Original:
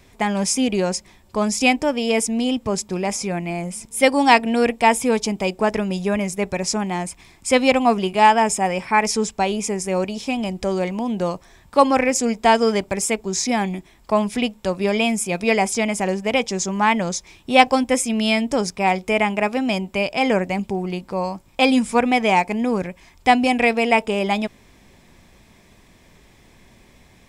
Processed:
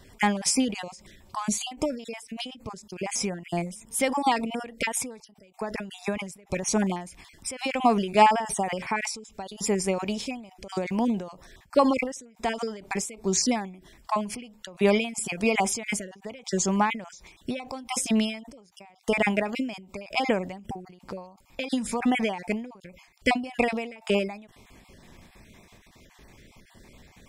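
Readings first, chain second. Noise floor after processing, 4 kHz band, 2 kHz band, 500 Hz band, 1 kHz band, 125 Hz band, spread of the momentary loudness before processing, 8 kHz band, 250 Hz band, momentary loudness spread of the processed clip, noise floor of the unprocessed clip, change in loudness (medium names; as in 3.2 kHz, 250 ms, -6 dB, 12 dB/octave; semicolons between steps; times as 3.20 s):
-58 dBFS, -8.0 dB, -9.0 dB, -8.5 dB, -8.5 dB, -7.0 dB, 10 LU, -5.0 dB, -7.5 dB, 16 LU, -52 dBFS, -7.5 dB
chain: random holes in the spectrogram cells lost 25%; endings held to a fixed fall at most 100 dB/s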